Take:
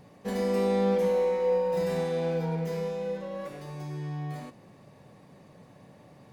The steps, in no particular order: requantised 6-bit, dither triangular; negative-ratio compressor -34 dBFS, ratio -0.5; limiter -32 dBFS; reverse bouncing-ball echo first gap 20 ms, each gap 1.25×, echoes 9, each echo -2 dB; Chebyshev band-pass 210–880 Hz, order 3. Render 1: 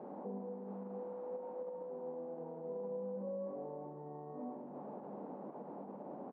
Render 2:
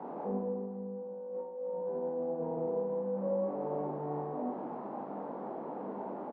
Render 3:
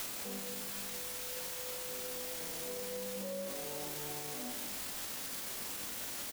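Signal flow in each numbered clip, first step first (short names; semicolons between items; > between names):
negative-ratio compressor > reverse bouncing-ball echo > requantised > limiter > Chebyshev band-pass; requantised > Chebyshev band-pass > negative-ratio compressor > limiter > reverse bouncing-ball echo; negative-ratio compressor > Chebyshev band-pass > requantised > reverse bouncing-ball echo > limiter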